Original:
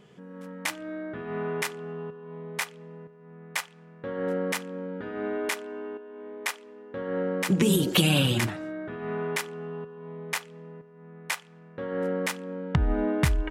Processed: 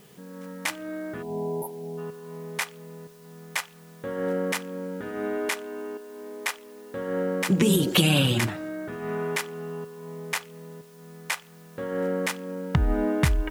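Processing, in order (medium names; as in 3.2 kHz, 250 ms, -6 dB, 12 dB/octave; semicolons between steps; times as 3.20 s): spectral selection erased 1.23–1.98 s, 1–9.9 kHz; word length cut 10-bit, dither triangular; trim +1.5 dB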